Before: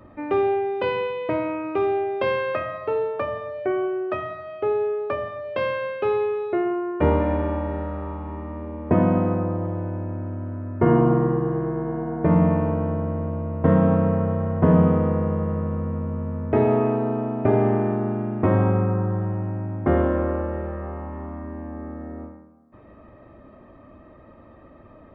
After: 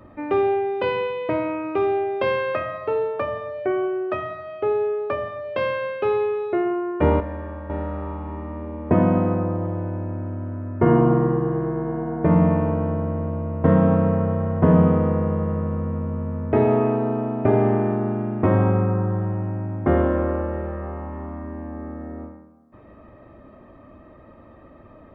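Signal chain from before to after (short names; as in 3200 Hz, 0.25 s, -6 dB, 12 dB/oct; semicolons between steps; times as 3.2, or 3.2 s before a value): 7.2–7.7 resonator 69 Hz, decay 0.31 s, harmonics all, mix 90%; gain +1 dB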